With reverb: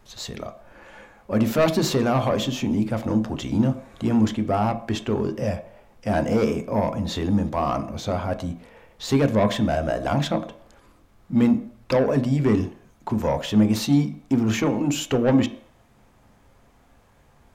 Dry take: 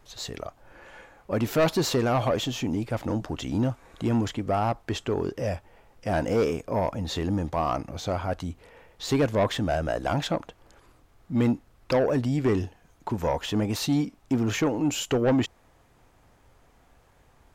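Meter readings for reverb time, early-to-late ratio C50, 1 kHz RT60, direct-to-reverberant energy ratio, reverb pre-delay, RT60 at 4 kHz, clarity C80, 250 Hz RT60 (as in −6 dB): 0.60 s, 13.5 dB, 0.60 s, 8.0 dB, 3 ms, 0.55 s, 17.0 dB, 0.40 s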